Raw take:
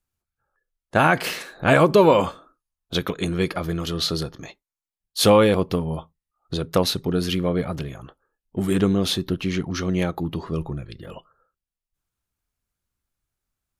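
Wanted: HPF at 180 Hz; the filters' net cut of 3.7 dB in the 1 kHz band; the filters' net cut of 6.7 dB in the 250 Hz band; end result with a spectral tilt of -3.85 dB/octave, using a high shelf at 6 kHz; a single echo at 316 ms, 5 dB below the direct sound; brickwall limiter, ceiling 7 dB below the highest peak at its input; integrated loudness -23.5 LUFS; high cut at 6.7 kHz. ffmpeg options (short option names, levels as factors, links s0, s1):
-af "highpass=180,lowpass=6700,equalizer=f=250:t=o:g=-7.5,equalizer=f=1000:t=o:g=-4.5,highshelf=f=6000:g=6.5,alimiter=limit=0.282:level=0:latency=1,aecho=1:1:316:0.562,volume=1.26"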